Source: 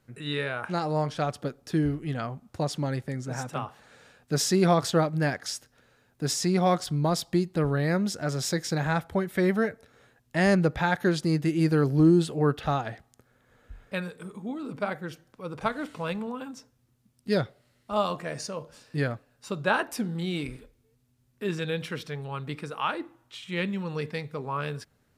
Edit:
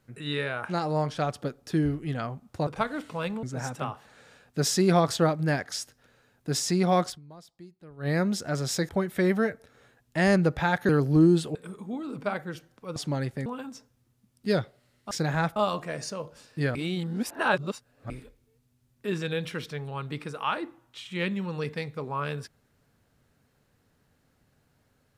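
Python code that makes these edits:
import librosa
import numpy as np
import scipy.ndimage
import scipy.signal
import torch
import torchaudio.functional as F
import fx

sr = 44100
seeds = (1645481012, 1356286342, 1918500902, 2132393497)

y = fx.edit(x, sr, fx.swap(start_s=2.67, length_s=0.5, other_s=15.52, other_length_s=0.76),
    fx.fade_down_up(start_s=6.83, length_s=0.99, db=-23.0, fade_s=0.12, curve='qua'),
    fx.move(start_s=8.63, length_s=0.45, to_s=17.93),
    fx.cut(start_s=11.08, length_s=0.65),
    fx.cut(start_s=12.39, length_s=1.72),
    fx.reverse_span(start_s=19.12, length_s=1.35), tone=tone)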